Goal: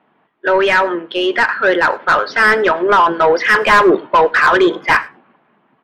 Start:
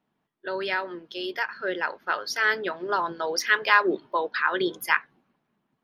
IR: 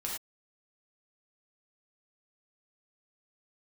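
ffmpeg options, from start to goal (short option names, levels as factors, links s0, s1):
-filter_complex "[0:a]lowpass=f=3300:w=0.5412,lowpass=f=3300:w=1.3066,asplit=2[s0][s1];[s1]highpass=f=720:p=1,volume=20,asoftclip=type=tanh:threshold=0.631[s2];[s0][s2]amix=inputs=2:normalize=0,lowpass=f=1500:p=1,volume=0.501,asplit=2[s3][s4];[s4]adelay=99.13,volume=0.0631,highshelf=f=4000:g=-2.23[s5];[s3][s5]amix=inputs=2:normalize=0,asplit=2[s6][s7];[1:a]atrim=start_sample=2205[s8];[s7][s8]afir=irnorm=-1:irlink=0,volume=0.0891[s9];[s6][s9]amix=inputs=2:normalize=0,volume=1.58"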